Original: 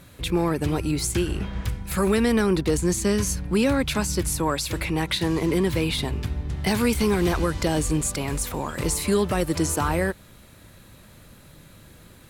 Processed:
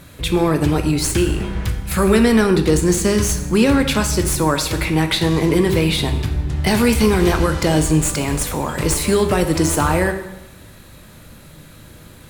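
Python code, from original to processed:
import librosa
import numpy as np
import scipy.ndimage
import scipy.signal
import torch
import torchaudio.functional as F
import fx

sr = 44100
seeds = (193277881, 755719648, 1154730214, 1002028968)

y = fx.tracing_dist(x, sr, depth_ms=0.021)
y = fx.rev_plate(y, sr, seeds[0], rt60_s=0.99, hf_ratio=0.85, predelay_ms=0, drr_db=6.5)
y = F.gain(torch.from_numpy(y), 6.0).numpy()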